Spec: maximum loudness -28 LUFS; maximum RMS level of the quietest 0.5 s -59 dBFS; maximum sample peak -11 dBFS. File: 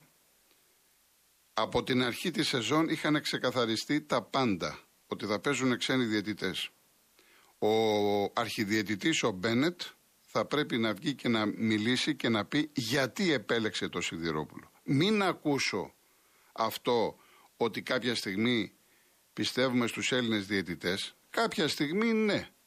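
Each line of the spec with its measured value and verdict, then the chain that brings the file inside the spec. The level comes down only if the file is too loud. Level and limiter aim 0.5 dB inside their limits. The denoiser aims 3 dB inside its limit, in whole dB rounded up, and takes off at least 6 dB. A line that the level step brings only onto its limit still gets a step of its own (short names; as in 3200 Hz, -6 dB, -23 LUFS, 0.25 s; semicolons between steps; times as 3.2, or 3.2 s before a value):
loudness -30.5 LUFS: OK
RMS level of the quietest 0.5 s -68 dBFS: OK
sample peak -16.5 dBFS: OK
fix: none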